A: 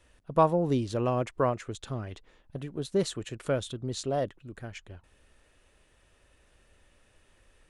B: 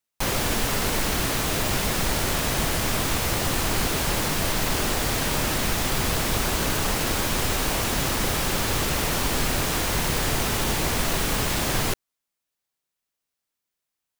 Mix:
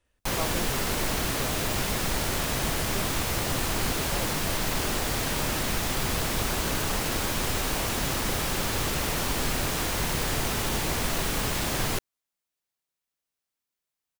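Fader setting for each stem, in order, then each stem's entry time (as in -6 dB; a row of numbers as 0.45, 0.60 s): -12.0, -3.5 dB; 0.00, 0.05 s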